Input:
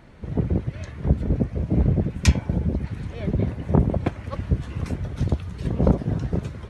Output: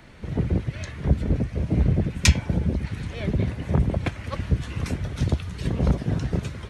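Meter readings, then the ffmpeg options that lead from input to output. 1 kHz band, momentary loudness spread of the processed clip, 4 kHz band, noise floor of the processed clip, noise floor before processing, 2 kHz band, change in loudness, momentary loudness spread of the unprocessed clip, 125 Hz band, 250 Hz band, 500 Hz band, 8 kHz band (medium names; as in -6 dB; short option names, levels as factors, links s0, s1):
-1.5 dB, 9 LU, +6.5 dB, -39 dBFS, -40 dBFS, +5.0 dB, -0.5 dB, 9 LU, -0.5 dB, -2.0 dB, -3.0 dB, +6.5 dB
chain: -filter_complex "[0:a]acrossover=split=150|1600[s0][s1][s2];[s1]alimiter=limit=0.133:level=0:latency=1:release=175[s3];[s2]acontrast=73[s4];[s0][s3][s4]amix=inputs=3:normalize=0"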